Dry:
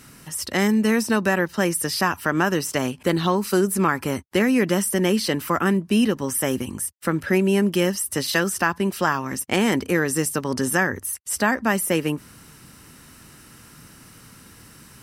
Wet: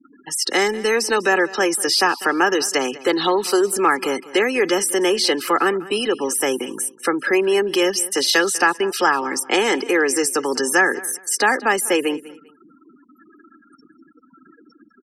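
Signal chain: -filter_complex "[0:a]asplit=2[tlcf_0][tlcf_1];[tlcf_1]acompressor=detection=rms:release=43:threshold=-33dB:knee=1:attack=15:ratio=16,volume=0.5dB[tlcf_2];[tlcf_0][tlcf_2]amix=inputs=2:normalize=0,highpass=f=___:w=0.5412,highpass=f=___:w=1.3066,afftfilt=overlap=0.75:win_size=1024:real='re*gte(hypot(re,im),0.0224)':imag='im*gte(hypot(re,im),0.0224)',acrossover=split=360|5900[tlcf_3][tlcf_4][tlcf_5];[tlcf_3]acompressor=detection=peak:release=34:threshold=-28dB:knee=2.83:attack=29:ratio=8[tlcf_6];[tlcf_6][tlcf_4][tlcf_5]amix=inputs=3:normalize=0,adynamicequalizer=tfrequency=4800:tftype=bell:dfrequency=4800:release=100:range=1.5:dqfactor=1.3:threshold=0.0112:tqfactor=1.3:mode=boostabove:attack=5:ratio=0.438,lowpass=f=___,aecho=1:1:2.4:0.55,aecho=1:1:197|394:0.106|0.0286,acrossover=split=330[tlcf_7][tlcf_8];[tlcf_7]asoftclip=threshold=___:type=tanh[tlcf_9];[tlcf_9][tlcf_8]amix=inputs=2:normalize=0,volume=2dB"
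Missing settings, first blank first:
230, 230, 9700, -28dB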